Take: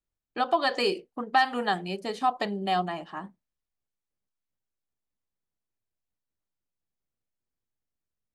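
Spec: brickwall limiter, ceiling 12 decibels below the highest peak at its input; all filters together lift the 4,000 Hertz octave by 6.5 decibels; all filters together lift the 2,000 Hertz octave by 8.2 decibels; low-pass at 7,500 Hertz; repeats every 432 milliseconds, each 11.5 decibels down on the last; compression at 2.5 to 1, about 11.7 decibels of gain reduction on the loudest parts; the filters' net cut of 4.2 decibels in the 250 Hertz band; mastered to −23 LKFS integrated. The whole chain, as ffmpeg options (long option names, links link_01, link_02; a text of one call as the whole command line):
ffmpeg -i in.wav -af "lowpass=7500,equalizer=frequency=250:width_type=o:gain=-6,equalizer=frequency=2000:width_type=o:gain=8.5,equalizer=frequency=4000:width_type=o:gain=5.5,acompressor=threshold=-31dB:ratio=2.5,alimiter=level_in=2.5dB:limit=-24dB:level=0:latency=1,volume=-2.5dB,aecho=1:1:432|864|1296:0.266|0.0718|0.0194,volume=14.5dB" out.wav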